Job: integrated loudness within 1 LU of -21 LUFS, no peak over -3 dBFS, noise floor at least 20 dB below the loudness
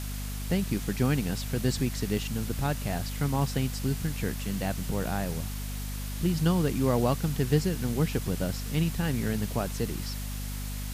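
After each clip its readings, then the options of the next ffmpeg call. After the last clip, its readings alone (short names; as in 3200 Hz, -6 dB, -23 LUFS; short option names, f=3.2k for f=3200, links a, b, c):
hum 50 Hz; harmonics up to 250 Hz; hum level -32 dBFS; noise floor -35 dBFS; noise floor target -50 dBFS; loudness -29.5 LUFS; peak -10.0 dBFS; loudness target -21.0 LUFS
-> -af "bandreject=f=50:t=h:w=6,bandreject=f=100:t=h:w=6,bandreject=f=150:t=h:w=6,bandreject=f=200:t=h:w=6,bandreject=f=250:t=h:w=6"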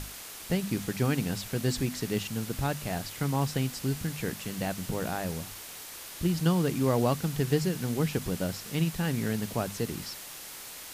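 hum none; noise floor -44 dBFS; noise floor target -51 dBFS
-> -af "afftdn=nr=7:nf=-44"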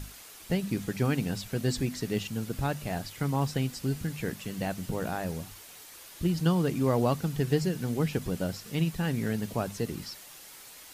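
noise floor -49 dBFS; noise floor target -51 dBFS
-> -af "afftdn=nr=6:nf=-49"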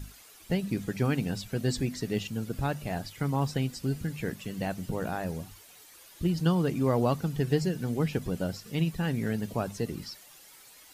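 noise floor -54 dBFS; loudness -31.0 LUFS; peak -12.0 dBFS; loudness target -21.0 LUFS
-> -af "volume=10dB,alimiter=limit=-3dB:level=0:latency=1"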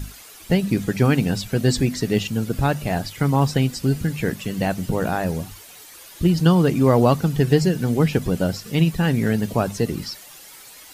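loudness -21.0 LUFS; peak -3.0 dBFS; noise floor -44 dBFS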